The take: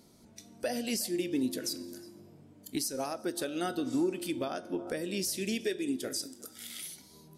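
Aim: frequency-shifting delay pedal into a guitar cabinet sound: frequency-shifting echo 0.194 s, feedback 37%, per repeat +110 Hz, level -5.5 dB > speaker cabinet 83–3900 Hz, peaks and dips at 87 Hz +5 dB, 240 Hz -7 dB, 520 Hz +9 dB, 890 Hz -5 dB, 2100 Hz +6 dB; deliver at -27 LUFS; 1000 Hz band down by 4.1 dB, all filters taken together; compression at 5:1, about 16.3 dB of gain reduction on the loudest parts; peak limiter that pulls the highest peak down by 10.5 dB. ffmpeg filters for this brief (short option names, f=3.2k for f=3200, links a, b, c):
-filter_complex "[0:a]equalizer=f=1k:t=o:g=-6.5,acompressor=threshold=-46dB:ratio=5,alimiter=level_in=16dB:limit=-24dB:level=0:latency=1,volume=-16dB,asplit=5[a][b][c][d][e];[b]adelay=194,afreqshift=110,volume=-5.5dB[f];[c]adelay=388,afreqshift=220,volume=-14.1dB[g];[d]adelay=582,afreqshift=330,volume=-22.8dB[h];[e]adelay=776,afreqshift=440,volume=-31.4dB[i];[a][f][g][h][i]amix=inputs=5:normalize=0,highpass=83,equalizer=f=87:t=q:w=4:g=5,equalizer=f=240:t=q:w=4:g=-7,equalizer=f=520:t=q:w=4:g=9,equalizer=f=890:t=q:w=4:g=-5,equalizer=f=2.1k:t=q:w=4:g=6,lowpass=f=3.9k:w=0.5412,lowpass=f=3.9k:w=1.3066,volume=21.5dB"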